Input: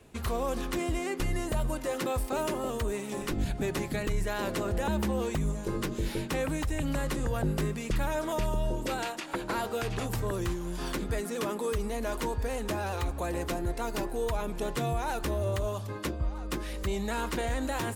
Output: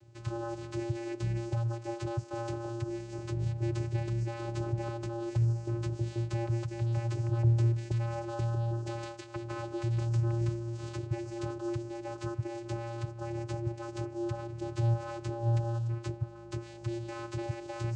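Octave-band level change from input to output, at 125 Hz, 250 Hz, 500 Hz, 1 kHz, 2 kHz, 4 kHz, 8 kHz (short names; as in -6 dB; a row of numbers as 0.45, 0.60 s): +5.0 dB, -4.0 dB, -6.5 dB, -7.5 dB, -10.5 dB, -10.5 dB, under -10 dB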